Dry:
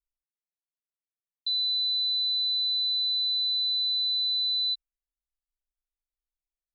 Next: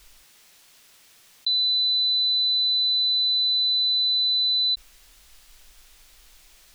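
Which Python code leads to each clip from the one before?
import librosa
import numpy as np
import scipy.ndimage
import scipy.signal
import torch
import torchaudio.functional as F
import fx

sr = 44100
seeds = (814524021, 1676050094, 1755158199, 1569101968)

y = fx.peak_eq(x, sr, hz=3600.0, db=6.5, octaves=2.5)
y = fx.env_flatten(y, sr, amount_pct=70)
y = F.gain(torch.from_numpy(y), -1.5).numpy()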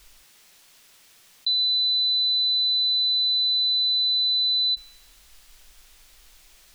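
y = fx.comb_fb(x, sr, f0_hz=190.0, decay_s=0.9, harmonics='all', damping=0.0, mix_pct=40)
y = F.gain(torch.from_numpy(y), 4.0).numpy()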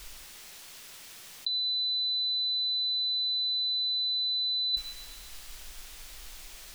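y = fx.echo_wet_lowpass(x, sr, ms=113, feedback_pct=64, hz=1100.0, wet_db=-13.0)
y = fx.over_compress(y, sr, threshold_db=-27.0, ratio=-0.5)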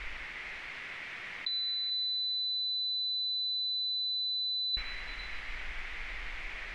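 y = fx.lowpass_res(x, sr, hz=2100.0, q=4.1)
y = y + 10.0 ** (-15.5 / 20.0) * np.pad(y, (int(452 * sr / 1000.0), 0))[:len(y)]
y = fx.rev_plate(y, sr, seeds[0], rt60_s=4.8, hf_ratio=0.5, predelay_ms=105, drr_db=14.5)
y = F.gain(torch.from_numpy(y), 5.5).numpy()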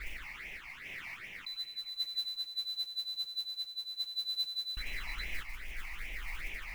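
y = fx.tremolo_random(x, sr, seeds[1], hz=3.5, depth_pct=55)
y = fx.phaser_stages(y, sr, stages=8, low_hz=430.0, high_hz=1400.0, hz=2.5, feedback_pct=25)
y = fx.mod_noise(y, sr, seeds[2], snr_db=20)
y = F.gain(torch.from_numpy(y), 3.0).numpy()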